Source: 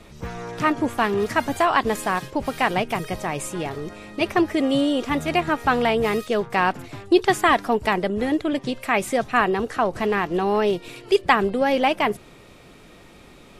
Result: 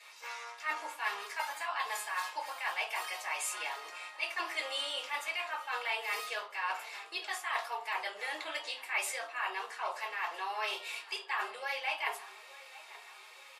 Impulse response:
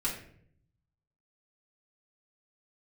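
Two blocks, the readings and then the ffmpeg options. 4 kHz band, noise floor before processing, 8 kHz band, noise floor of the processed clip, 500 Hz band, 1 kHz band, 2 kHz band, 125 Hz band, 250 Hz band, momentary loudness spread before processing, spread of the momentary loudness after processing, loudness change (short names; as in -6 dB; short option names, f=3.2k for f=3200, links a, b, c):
-7.0 dB, -48 dBFS, -5.5 dB, -53 dBFS, -23.5 dB, -14.5 dB, -9.5 dB, under -40 dB, -38.0 dB, 9 LU, 9 LU, -14.0 dB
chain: -filter_complex "[0:a]highpass=f=940:w=0.5412,highpass=f=940:w=1.3066,areverse,acompressor=threshold=-31dB:ratio=6,areverse,asplit=2[a][b];[b]adelay=881,lowpass=f=2k:p=1,volume=-17dB,asplit=2[c][d];[d]adelay=881,lowpass=f=2k:p=1,volume=0.55,asplit=2[e][f];[f]adelay=881,lowpass=f=2k:p=1,volume=0.55,asplit=2[g][h];[h]adelay=881,lowpass=f=2k:p=1,volume=0.55,asplit=2[i][j];[j]adelay=881,lowpass=f=2k:p=1,volume=0.55[k];[a][c][e][g][i][k]amix=inputs=6:normalize=0[l];[1:a]atrim=start_sample=2205,asetrate=83790,aresample=44100[m];[l][m]afir=irnorm=-1:irlink=0"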